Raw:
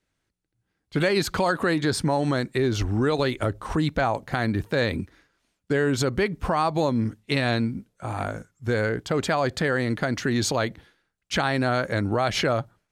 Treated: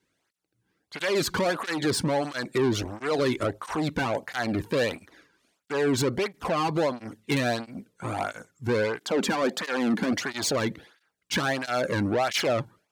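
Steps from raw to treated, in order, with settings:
0:08.99–0:10.13: low shelf with overshoot 140 Hz −14 dB, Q 3
soft clipping −25 dBFS, distortion −9 dB
through-zero flanger with one copy inverted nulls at 1.5 Hz, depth 1.7 ms
level +6.5 dB

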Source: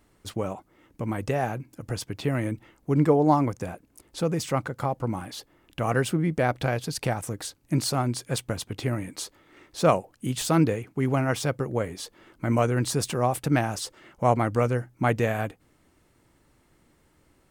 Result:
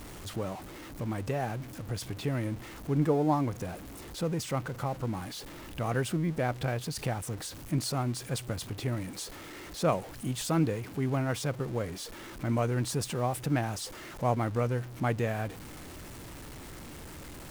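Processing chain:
converter with a step at zero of −32.5 dBFS
low-shelf EQ 210 Hz +3.5 dB
level −8 dB

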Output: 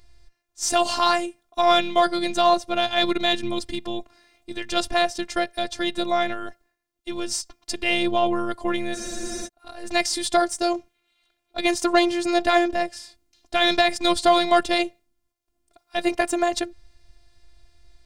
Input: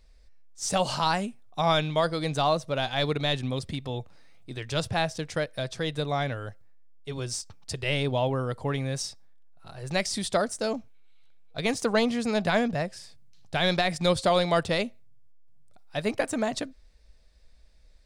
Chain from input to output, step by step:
harmonic generator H 4 −31 dB, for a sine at −12.5 dBFS
phases set to zero 348 Hz
frozen spectrum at 0:08.96, 0.50 s
level +8 dB

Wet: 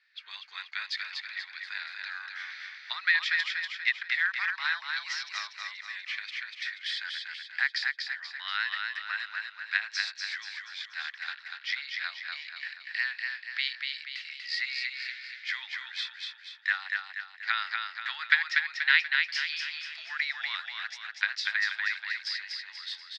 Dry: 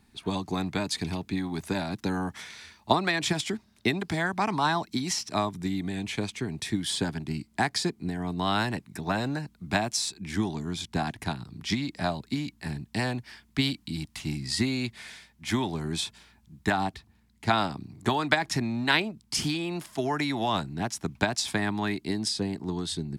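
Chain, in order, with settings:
elliptic band-pass filter 1,400–4,900 Hz, stop band 80 dB
parametric band 1,900 Hz +10.5 dB 0.4 octaves
repeating echo 241 ms, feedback 47%, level −4 dB
level −2 dB

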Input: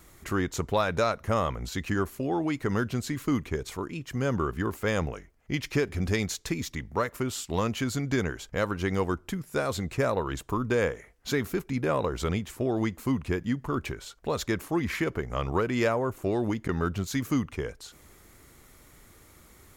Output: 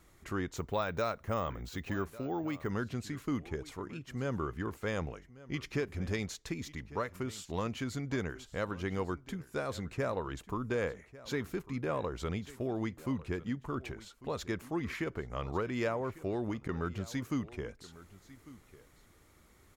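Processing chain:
high-shelf EQ 8,500 Hz −8 dB
single-tap delay 1,148 ms −18.5 dB
0:00.56–0:02.70: bad sample-rate conversion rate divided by 2×, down none, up hold
level −7.5 dB

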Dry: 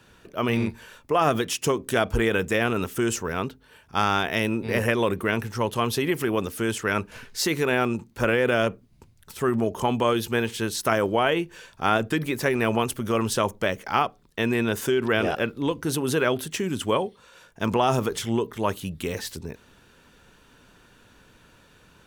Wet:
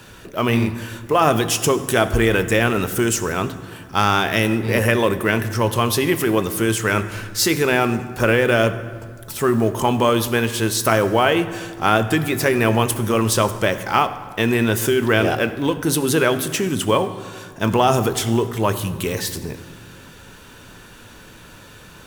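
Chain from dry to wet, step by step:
mu-law and A-law mismatch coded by mu
high-shelf EQ 7,700 Hz +6 dB
convolution reverb RT60 1.9 s, pre-delay 4 ms, DRR 10 dB
level +4.5 dB

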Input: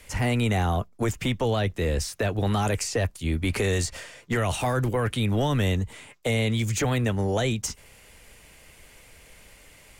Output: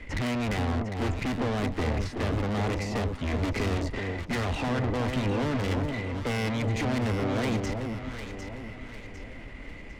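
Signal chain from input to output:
low-pass filter 2,700 Hz 12 dB per octave
low-shelf EQ 82 Hz +10 dB
hollow resonant body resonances 270/2,000 Hz, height 12 dB, ringing for 30 ms
tube saturation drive 32 dB, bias 0.4
on a send: delay that swaps between a low-pass and a high-pass 376 ms, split 980 Hz, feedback 64%, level −4 dB
on the sum: level +4.5 dB

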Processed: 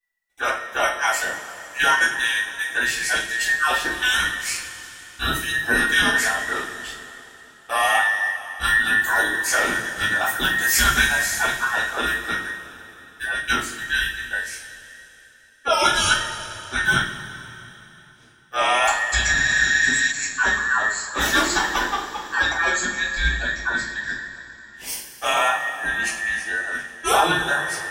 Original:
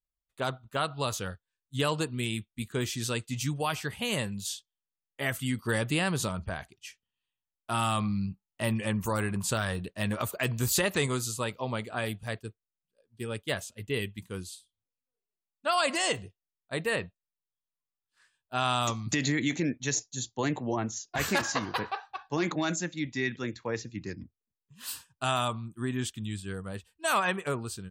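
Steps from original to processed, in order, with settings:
frequency inversion band by band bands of 2,000 Hz
coupled-rooms reverb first 0.37 s, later 3.3 s, from −17 dB, DRR −9.5 dB
healed spectral selection 0:19.38–0:20.09, 1,500–7,500 Hz before

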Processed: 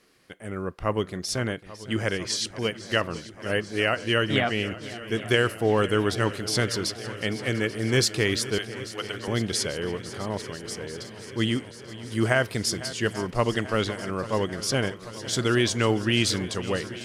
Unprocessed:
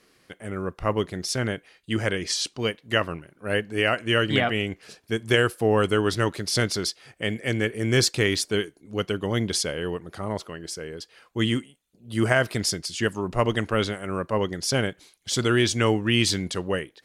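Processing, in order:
0:08.58–0:09.28: high-pass filter 710 Hz
on a send: feedback echo with a long and a short gap by turns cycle 838 ms, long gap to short 1.5 to 1, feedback 72%, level −16.5 dB
on the sum: level −1.5 dB

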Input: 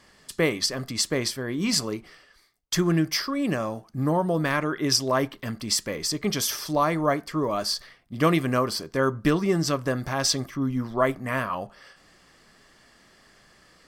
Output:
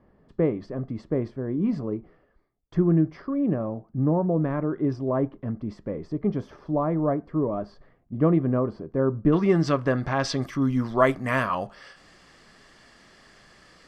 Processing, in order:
Bessel low-pass filter 500 Hz, order 2, from 0:09.32 2,300 Hz, from 0:10.41 7,200 Hz
level +3 dB

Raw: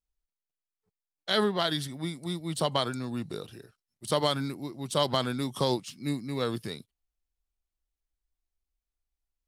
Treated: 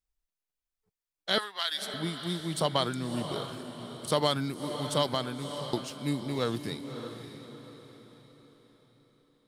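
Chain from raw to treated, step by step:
0:01.38–0:01.94: high-pass filter 1,400 Hz 12 dB per octave
0:04.89–0:05.73: fade out
feedback delay with all-pass diffusion 591 ms, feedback 43%, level −9 dB

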